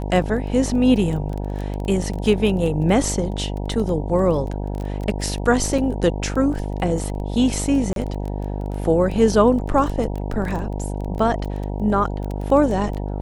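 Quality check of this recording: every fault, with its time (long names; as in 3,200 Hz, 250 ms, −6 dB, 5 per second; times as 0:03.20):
mains buzz 50 Hz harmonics 19 −26 dBFS
surface crackle 12 per second −25 dBFS
0:05.78: drop-out 4.5 ms
0:07.93–0:07.96: drop-out 32 ms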